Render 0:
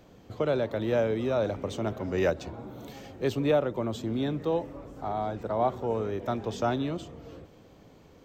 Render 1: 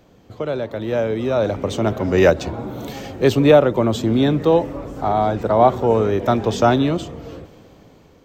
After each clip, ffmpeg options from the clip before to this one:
-af "dynaudnorm=f=430:g=7:m=3.76,volume=1.33"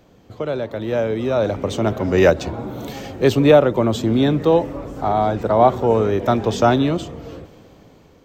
-af anull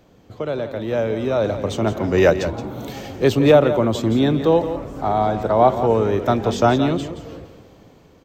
-af "aecho=1:1:172:0.282,volume=0.891"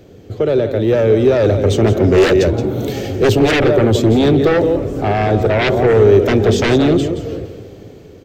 -af "aeval=exprs='0.841*sin(PI/2*4.47*val(0)/0.841)':c=same,equalizer=f=100:t=o:w=0.67:g=8,equalizer=f=400:t=o:w=0.67:g=9,equalizer=f=1000:t=o:w=0.67:g=-9,volume=0.335"

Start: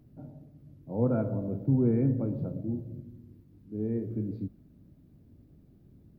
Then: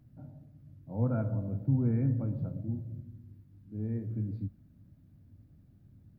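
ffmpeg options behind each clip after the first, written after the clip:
-af "equalizer=f=100:t=o:w=0.67:g=7,equalizer=f=400:t=o:w=0.67:g=-9,equalizer=f=1600:t=o:w=0.67:g=4,volume=0.668"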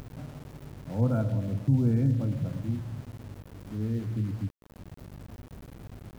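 -af "aeval=exprs='val(0)+0.00112*(sin(2*PI*50*n/s)+sin(2*PI*2*50*n/s)/2+sin(2*PI*3*50*n/s)/3+sin(2*PI*4*50*n/s)/4+sin(2*PI*5*50*n/s)/5)':c=same,acompressor=mode=upward:threshold=0.0126:ratio=2.5,aeval=exprs='val(0)*gte(abs(val(0)),0.00447)':c=same,volume=1.58"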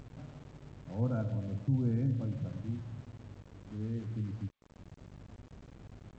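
-af "volume=0.473" -ar 16000 -c:a g722

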